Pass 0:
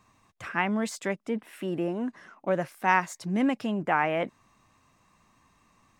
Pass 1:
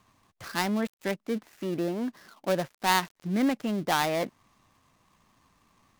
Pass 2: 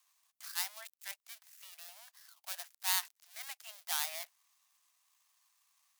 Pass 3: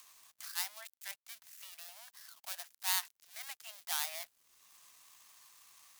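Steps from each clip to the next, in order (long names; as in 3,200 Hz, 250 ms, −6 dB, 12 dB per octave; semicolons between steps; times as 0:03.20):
gap after every zero crossing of 0.15 ms
Butterworth high-pass 630 Hz 96 dB per octave; first difference
in parallel at +3 dB: upward compression, threshold −39 dBFS; on the sum: bit-depth reduction 10 bits, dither none; level −8.5 dB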